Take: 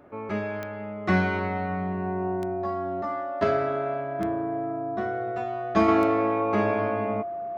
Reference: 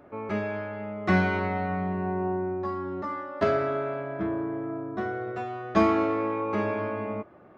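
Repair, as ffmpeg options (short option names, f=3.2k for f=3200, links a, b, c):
-af "adeclick=t=4,bandreject=f=690:w=30,asetnsamples=n=441:p=0,asendcmd='5.88 volume volume -3.5dB',volume=0dB"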